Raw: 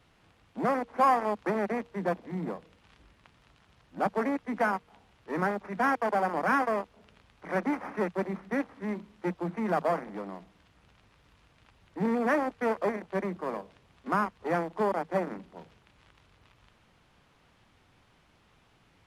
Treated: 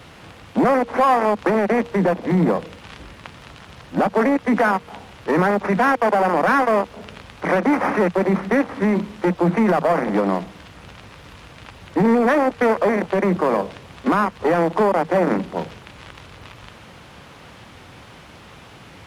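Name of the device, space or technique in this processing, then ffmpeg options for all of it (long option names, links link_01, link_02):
mastering chain: -af "highpass=57,equalizer=frequency=530:width_type=o:width=0.22:gain=3,acompressor=threshold=-30dB:ratio=2.5,asoftclip=type=tanh:threshold=-23dB,alimiter=level_in=30dB:limit=-1dB:release=50:level=0:latency=1,volume=-9dB"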